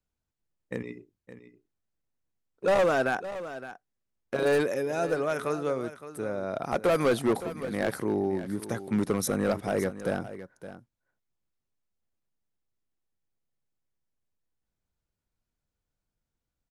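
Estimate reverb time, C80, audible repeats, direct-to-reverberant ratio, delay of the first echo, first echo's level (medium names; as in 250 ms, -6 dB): no reverb, no reverb, 1, no reverb, 565 ms, -13.5 dB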